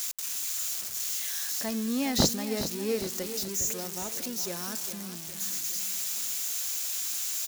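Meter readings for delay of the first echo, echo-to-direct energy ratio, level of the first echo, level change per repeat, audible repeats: 410 ms, −10.0 dB, −11.0 dB, −6.0 dB, 3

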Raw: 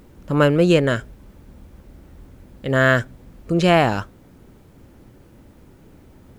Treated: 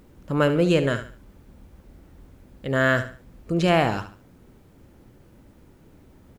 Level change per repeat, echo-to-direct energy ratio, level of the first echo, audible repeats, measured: −10.0 dB, −11.0 dB, −11.5 dB, 3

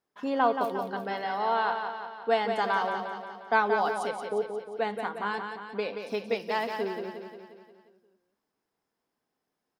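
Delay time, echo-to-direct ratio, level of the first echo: 177 ms, −5.0 dB, −6.5 dB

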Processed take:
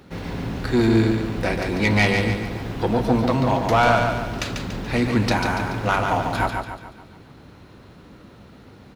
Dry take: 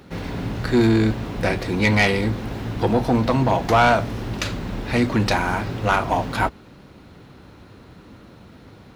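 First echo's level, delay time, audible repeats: −5.0 dB, 143 ms, 5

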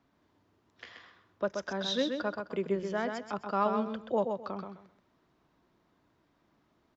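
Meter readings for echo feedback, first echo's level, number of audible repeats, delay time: 23%, −5.5 dB, 3, 129 ms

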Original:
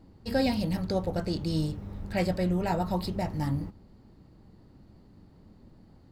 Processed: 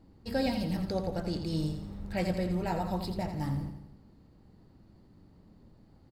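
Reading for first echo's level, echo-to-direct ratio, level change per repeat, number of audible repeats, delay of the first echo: −8.5 dB, −7.5 dB, −6.0 dB, 5, 85 ms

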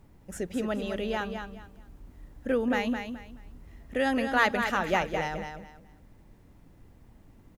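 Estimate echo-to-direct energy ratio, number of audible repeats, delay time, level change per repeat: −6.5 dB, 3, 213 ms, −12.0 dB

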